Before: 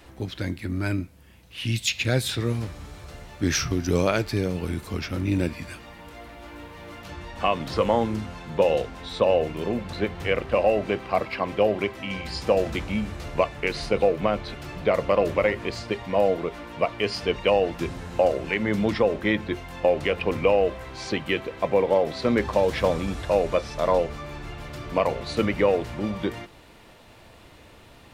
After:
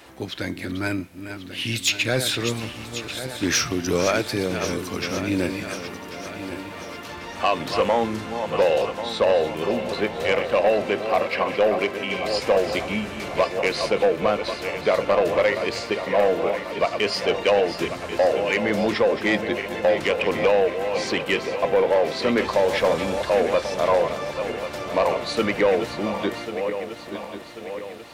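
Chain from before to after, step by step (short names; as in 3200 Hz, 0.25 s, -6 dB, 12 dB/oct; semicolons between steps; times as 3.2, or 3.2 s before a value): regenerating reverse delay 0.545 s, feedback 67%, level -10 dB; HPF 340 Hz 6 dB/oct; soft clip -17 dBFS, distortion -15 dB; gain +5.5 dB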